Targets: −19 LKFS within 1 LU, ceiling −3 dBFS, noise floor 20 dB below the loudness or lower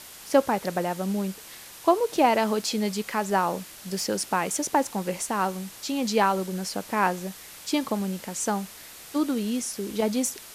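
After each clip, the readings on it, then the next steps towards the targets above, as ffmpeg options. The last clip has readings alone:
background noise floor −45 dBFS; target noise floor −47 dBFS; integrated loudness −26.5 LKFS; sample peak −7.0 dBFS; target loudness −19.0 LKFS
→ -af "afftdn=noise_reduction=6:noise_floor=-45"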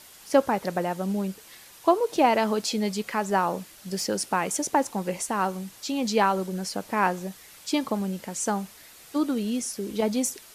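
background noise floor −50 dBFS; integrated loudness −26.5 LKFS; sample peak −7.5 dBFS; target loudness −19.0 LKFS
→ -af "volume=7.5dB,alimiter=limit=-3dB:level=0:latency=1"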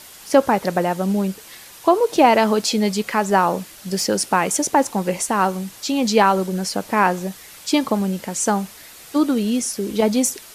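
integrated loudness −19.5 LKFS; sample peak −3.0 dBFS; background noise floor −42 dBFS

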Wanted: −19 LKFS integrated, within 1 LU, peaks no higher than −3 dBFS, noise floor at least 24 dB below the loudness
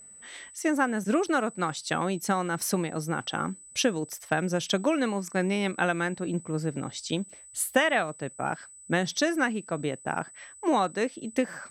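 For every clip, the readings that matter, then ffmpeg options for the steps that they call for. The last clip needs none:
interfering tone 8,000 Hz; level of the tone −47 dBFS; integrated loudness −28.5 LKFS; sample peak −10.0 dBFS; target loudness −19.0 LKFS
→ -af "bandreject=frequency=8000:width=30"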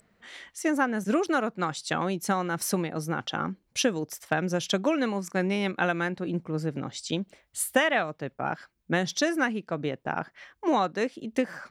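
interfering tone none found; integrated loudness −28.5 LKFS; sample peak −10.5 dBFS; target loudness −19.0 LKFS
→ -af "volume=9.5dB,alimiter=limit=-3dB:level=0:latency=1"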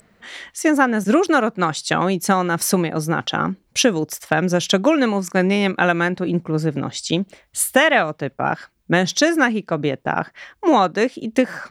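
integrated loudness −19.5 LKFS; sample peak −3.0 dBFS; background noise floor −60 dBFS

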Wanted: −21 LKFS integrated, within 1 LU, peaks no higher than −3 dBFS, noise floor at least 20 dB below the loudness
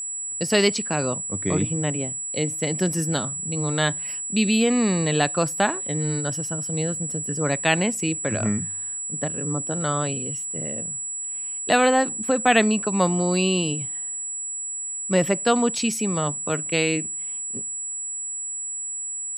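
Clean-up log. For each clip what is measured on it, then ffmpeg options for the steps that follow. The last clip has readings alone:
interfering tone 7,800 Hz; level of the tone −28 dBFS; integrated loudness −23.5 LKFS; sample peak −3.0 dBFS; target loudness −21.0 LKFS
→ -af "bandreject=frequency=7800:width=30"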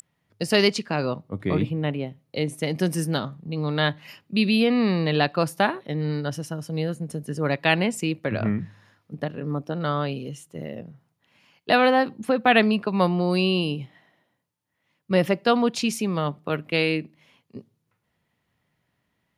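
interfering tone none found; integrated loudness −24.0 LKFS; sample peak −3.0 dBFS; target loudness −21.0 LKFS
→ -af "volume=3dB,alimiter=limit=-3dB:level=0:latency=1"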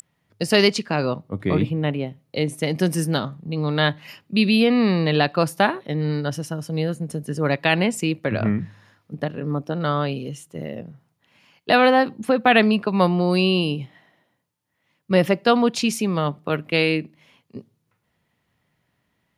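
integrated loudness −21.5 LKFS; sample peak −3.0 dBFS; background noise floor −72 dBFS

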